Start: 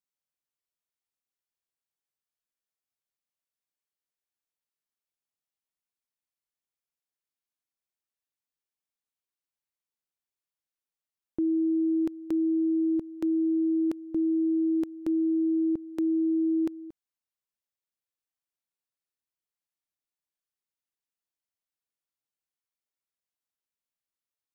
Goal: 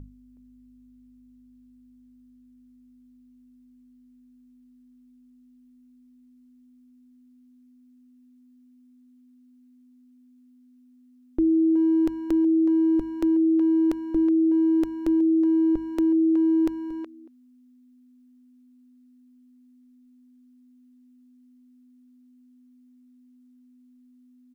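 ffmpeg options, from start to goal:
ffmpeg -i in.wav -filter_complex "[0:a]aeval=exprs='val(0)+0.00631*(sin(2*PI*50*n/s)+sin(2*PI*2*50*n/s)/2+sin(2*PI*3*50*n/s)/3+sin(2*PI*4*50*n/s)/4+sin(2*PI*5*50*n/s)/5)':channel_layout=same,asubboost=boost=7:cutoff=55,bandreject=frequency=50:width_type=h:width=6,bandreject=frequency=100:width_type=h:width=6,bandreject=frequency=150:width_type=h:width=6,bandreject=frequency=200:width_type=h:width=6,asplit=2[link_01][link_02];[link_02]adelay=370,highpass=300,lowpass=3400,asoftclip=type=hard:threshold=-28.5dB,volume=-9dB[link_03];[link_01][link_03]amix=inputs=2:normalize=0,volume=7dB" out.wav

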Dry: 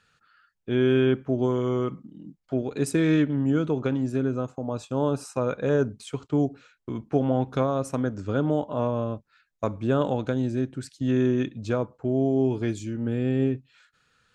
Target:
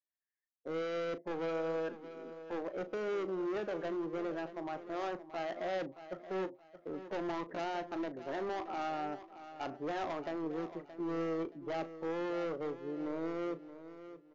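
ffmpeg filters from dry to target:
ffmpeg -i in.wav -filter_complex "[0:a]highpass=240,afftdn=noise_reduction=30:noise_floor=-38,lowpass=frequency=1500:width=0.5412,lowpass=frequency=1500:width=1.3066,aresample=11025,volume=28.5dB,asoftclip=hard,volume=-28.5dB,aresample=44100,asetrate=57191,aresample=44100,atempo=0.771105,asplit=2[link_01][link_02];[link_02]adelay=37,volume=-13.5dB[link_03];[link_01][link_03]amix=inputs=2:normalize=0,asplit=2[link_04][link_05];[link_05]aecho=0:1:624|1248|1872:0.224|0.0649|0.0188[link_06];[link_04][link_06]amix=inputs=2:normalize=0,volume=-6dB" out.wav

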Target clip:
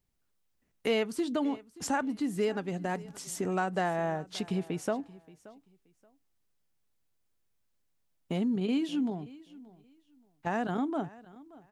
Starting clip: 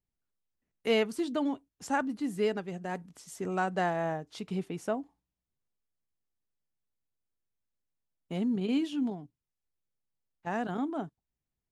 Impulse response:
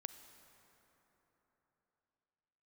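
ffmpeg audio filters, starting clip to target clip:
-filter_complex "[0:a]acompressor=threshold=-42dB:ratio=2,asplit=2[link_01][link_02];[link_02]aecho=0:1:577|1154:0.0944|0.0208[link_03];[link_01][link_03]amix=inputs=2:normalize=0,volume=8.5dB"

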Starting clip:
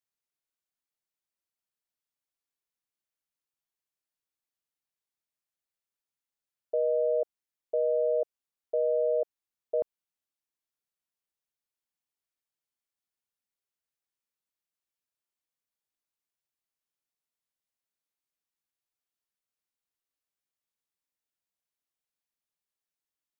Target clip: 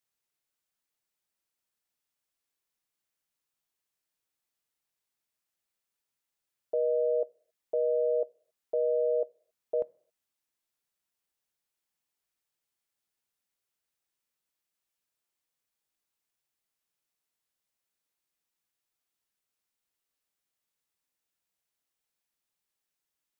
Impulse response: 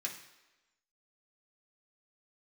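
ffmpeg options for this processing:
-filter_complex "[0:a]alimiter=level_in=1.5dB:limit=-24dB:level=0:latency=1:release=360,volume=-1.5dB,asplit=2[link_01][link_02];[1:a]atrim=start_sample=2205,afade=type=out:start_time=0.33:duration=0.01,atrim=end_sample=14994[link_03];[link_02][link_03]afir=irnorm=-1:irlink=0,volume=-14.5dB[link_04];[link_01][link_04]amix=inputs=2:normalize=0,volume=4dB"

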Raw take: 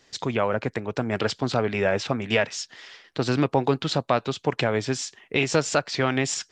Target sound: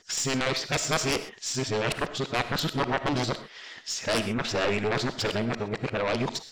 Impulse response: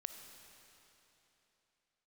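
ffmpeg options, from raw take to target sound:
-filter_complex "[0:a]areverse,aeval=exprs='0.501*(cos(1*acos(clip(val(0)/0.501,-1,1)))-cos(1*PI/2))+0.2*(cos(3*acos(clip(val(0)/0.501,-1,1)))-cos(3*PI/2))+0.0355*(cos(6*acos(clip(val(0)/0.501,-1,1)))-cos(6*PI/2))+0.112*(cos(7*acos(clip(val(0)/0.501,-1,1)))-cos(7*PI/2))':channel_layout=same[link_01];[1:a]atrim=start_sample=2205,atrim=end_sample=6174[link_02];[link_01][link_02]afir=irnorm=-1:irlink=0"

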